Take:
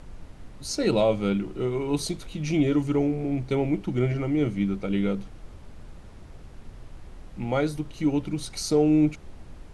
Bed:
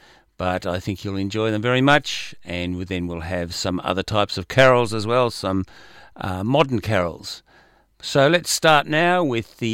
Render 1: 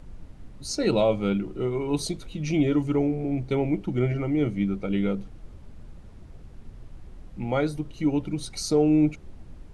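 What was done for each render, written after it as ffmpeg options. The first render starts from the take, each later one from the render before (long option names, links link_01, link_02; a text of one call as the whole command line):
ffmpeg -i in.wav -af "afftdn=noise_reduction=6:noise_floor=-46" out.wav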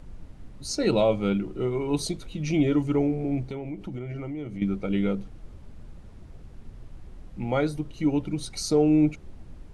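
ffmpeg -i in.wav -filter_complex "[0:a]asettb=1/sr,asplit=3[link_01][link_02][link_03];[link_01]atrim=end=3.464[link_04];[link_02]atrim=start=3.46:end=4.62,asetpts=PTS-STARTPTS,afade=type=in:duration=0.004:curve=qsin,afade=type=out:start_time=1.156:duration=0.004:curve=qsin,acompressor=threshold=-31dB:ratio=6:attack=3.2:release=140:knee=1:detection=peak[link_05];[link_03]atrim=start=4.616[link_06];[link_04][link_05]acrossfade=duration=0.004:curve1=hsin:curve2=qsin[link_07];[link_07][link_06]acrossfade=duration=0.004:curve1=qsin:curve2=hsin" out.wav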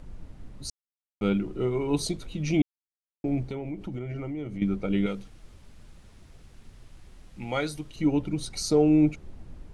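ffmpeg -i in.wav -filter_complex "[0:a]asettb=1/sr,asplit=3[link_01][link_02][link_03];[link_01]atrim=end=5.064[link_04];[link_02]atrim=start=5.06:end=7.96,asetpts=PTS-STARTPTS,afade=type=in:duration=0.004:curve=qsin,afade=type=out:start_time=2.896:duration=0.004:curve=qsin,tiltshelf=frequency=1400:gain=-6.5[link_05];[link_03]atrim=start=7.956[link_06];[link_04][link_05]acrossfade=duration=0.004:curve1=hsin:curve2=qsin[link_07];[link_07][link_06]acrossfade=duration=0.004:curve1=qsin:curve2=hsin,asplit=5[link_08][link_09][link_10][link_11][link_12];[link_08]atrim=end=0.7,asetpts=PTS-STARTPTS,afade=type=out:start_time=0.696:duration=0.004:curve=hsin[link_13];[link_09]atrim=start=0.7:end=1.21,asetpts=PTS-STARTPTS,volume=0[link_14];[link_10]atrim=start=1.21:end=2.62,asetpts=PTS-STARTPTS,afade=type=in:duration=0.004:curve=hsin,afade=type=out:start_time=1.406:duration=0.004:curve=hsin[link_15];[link_11]atrim=start=2.62:end=3.24,asetpts=PTS-STARTPTS,volume=0[link_16];[link_12]atrim=start=3.24,asetpts=PTS-STARTPTS,afade=type=in:duration=0.004:curve=hsin[link_17];[link_13][link_14][link_15][link_16][link_17]concat=n=5:v=0:a=1" out.wav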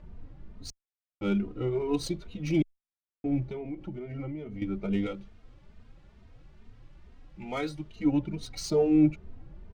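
ffmpeg -i in.wav -filter_complex "[0:a]adynamicsmooth=sensitivity=7:basefreq=3700,asplit=2[link_01][link_02];[link_02]adelay=3,afreqshift=2.3[link_03];[link_01][link_03]amix=inputs=2:normalize=1" out.wav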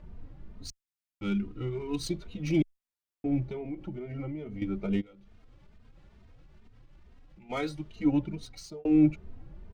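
ffmpeg -i in.wav -filter_complex "[0:a]asettb=1/sr,asplit=3[link_01][link_02][link_03];[link_01]atrim=end=0.674[link_04];[link_02]atrim=start=0.67:end=2.09,asetpts=PTS-STARTPTS,afade=type=in:duration=0.004:curve=qsin,afade=type=out:start_time=1.416:duration=0.004:curve=qsin,equalizer=frequency=590:width_type=o:width=1.4:gain=-11.5[link_05];[link_03]atrim=start=2.086[link_06];[link_04][link_05]acrossfade=duration=0.004:curve1=hsin:curve2=qsin[link_07];[link_07][link_06]acrossfade=duration=0.004:curve1=qsin:curve2=hsin,asplit=3[link_08][link_09][link_10];[link_08]afade=type=out:start_time=5:duration=0.02[link_11];[link_09]acompressor=threshold=-50dB:ratio=12:attack=3.2:release=140:knee=1:detection=peak,afade=type=in:start_time=5:duration=0.02,afade=type=out:start_time=7.49:duration=0.02[link_12];[link_10]afade=type=in:start_time=7.49:duration=0.02[link_13];[link_11][link_12][link_13]amix=inputs=3:normalize=0,asplit=2[link_14][link_15];[link_14]atrim=end=8.85,asetpts=PTS-STARTPTS,afade=type=out:start_time=8.2:duration=0.65[link_16];[link_15]atrim=start=8.85,asetpts=PTS-STARTPTS,afade=type=in:duration=0.004:curve=hsin[link_17];[link_16][link_17]concat=n=2:v=0:a=1" out.wav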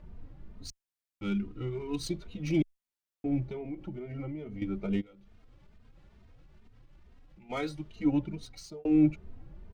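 ffmpeg -i in.wav -af "volume=-1.5dB" out.wav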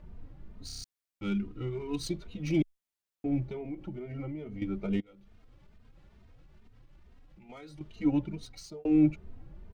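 ffmpeg -i in.wav -filter_complex "[0:a]asettb=1/sr,asplit=3[link_01][link_02][link_03];[link_01]atrim=end=5.004[link_04];[link_02]atrim=start=5:end=7.81,asetpts=PTS-STARTPTS,afade=type=in:duration=0.004:curve=qsin,afade=type=out:start_time=2.806:duration=0.004:curve=qsin,acompressor=threshold=-45dB:ratio=6:attack=3.2:release=140:knee=1:detection=peak[link_05];[link_03]atrim=start=7.806[link_06];[link_04][link_05]acrossfade=duration=0.004:curve1=hsin:curve2=qsin[link_07];[link_07][link_06]acrossfade=duration=0.004:curve1=qsin:curve2=hsin,asplit=7[link_08][link_09][link_10][link_11][link_12][link_13][link_14];[link_08]atrim=end=0.692[link_15];[link_09]atrim=start=0.658:end=0.692[link_16];[link_10]atrim=start=0.658:end=0.692[link_17];[link_11]atrim=start=0.658:end=0.692[link_18];[link_12]atrim=start=0.658:end=0.692[link_19];[link_13]atrim=start=0.658:end=0.692[link_20];[link_14]atrim=start=0.838[link_21];[link_15][link_16]acrossfade=duration=0.004:curve1=hsin:curve2=hsin[link_22];[link_22][link_17]acrossfade=duration=0.004:curve1=hsin:curve2=hsin[link_23];[link_23][link_18]acrossfade=duration=0.004:curve1=hsin:curve2=hsin[link_24];[link_24][link_19]acrossfade=duration=0.004:curve1=hsin:curve2=hsin[link_25];[link_25][link_20]acrossfade=duration=0.004:curve1=hsin:curve2=hsin[link_26];[link_26][link_21]acrossfade=duration=0.004:curve1=hsin:curve2=hsin" out.wav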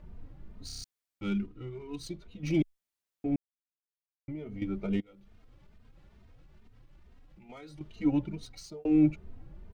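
ffmpeg -i in.wav -filter_complex "[0:a]asplit=5[link_01][link_02][link_03][link_04][link_05];[link_01]atrim=end=1.462[link_06];[link_02]atrim=start=1.458:end=2.432,asetpts=PTS-STARTPTS,volume=-6dB[link_07];[link_03]atrim=start=2.428:end=3.36,asetpts=PTS-STARTPTS,afade=type=out:start_time=0.928:duration=0.004:curve=hsin[link_08];[link_04]atrim=start=3.36:end=4.28,asetpts=PTS-STARTPTS,volume=0[link_09];[link_05]atrim=start=4.28,asetpts=PTS-STARTPTS,afade=type=in:duration=0.004:curve=hsin[link_10];[link_06][link_07]acrossfade=duration=0.004:curve1=hsin:curve2=hsin[link_11];[link_08][link_09][link_10]concat=n=3:v=0:a=1[link_12];[link_11][link_12]acrossfade=duration=0.004:curve1=hsin:curve2=hsin" out.wav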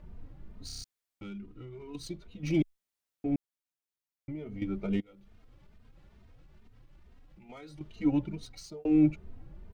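ffmpeg -i in.wav -filter_complex "[0:a]asettb=1/sr,asplit=3[link_01][link_02][link_03];[link_01]atrim=end=0.824[link_04];[link_02]atrim=start=0.82:end=1.95,asetpts=PTS-STARTPTS,afade=type=in:duration=0.004:curve=qsin,afade=type=out:start_time=1.126:duration=0.004:curve=qsin,acompressor=threshold=-41dB:ratio=4:attack=3.2:release=140:knee=1:detection=peak[link_05];[link_03]atrim=start=1.946[link_06];[link_04][link_05]acrossfade=duration=0.004:curve1=hsin:curve2=qsin[link_07];[link_07][link_06]acrossfade=duration=0.004:curve1=qsin:curve2=hsin" out.wav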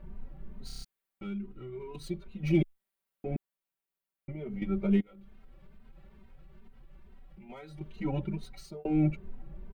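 ffmpeg -i in.wav -af "equalizer=frequency=5900:width_type=o:width=1.2:gain=-10,aecho=1:1:5.2:0.95" out.wav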